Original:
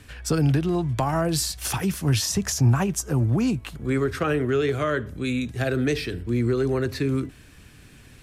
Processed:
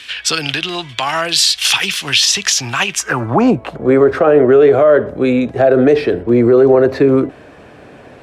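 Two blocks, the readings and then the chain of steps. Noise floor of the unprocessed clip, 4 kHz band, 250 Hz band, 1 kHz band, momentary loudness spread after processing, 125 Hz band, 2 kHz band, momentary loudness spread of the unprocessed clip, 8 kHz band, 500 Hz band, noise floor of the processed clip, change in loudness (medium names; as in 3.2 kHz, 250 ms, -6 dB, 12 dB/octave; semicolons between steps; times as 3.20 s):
-49 dBFS, +17.5 dB, +9.0 dB, +11.5 dB, 9 LU, -1.5 dB, +12.5 dB, 6 LU, +11.0 dB, +15.5 dB, -39 dBFS, +11.5 dB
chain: band-pass sweep 3.2 kHz -> 620 Hz, 2.88–3.50 s; loudness maximiser +27 dB; trim -1 dB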